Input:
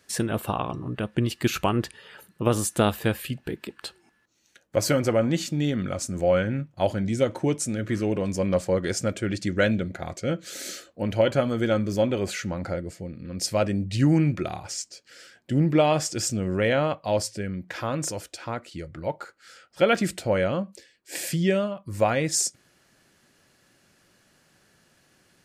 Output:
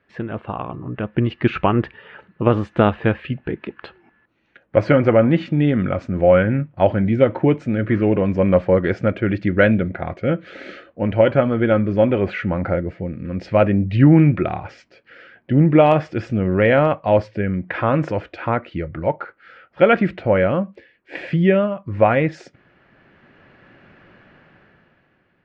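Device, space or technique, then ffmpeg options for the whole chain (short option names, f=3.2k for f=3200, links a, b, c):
action camera in a waterproof case: -af "lowpass=f=2.5k:w=0.5412,lowpass=f=2.5k:w=1.3066,dynaudnorm=f=120:g=17:m=16dB,volume=-1dB" -ar 44100 -c:a aac -b:a 128k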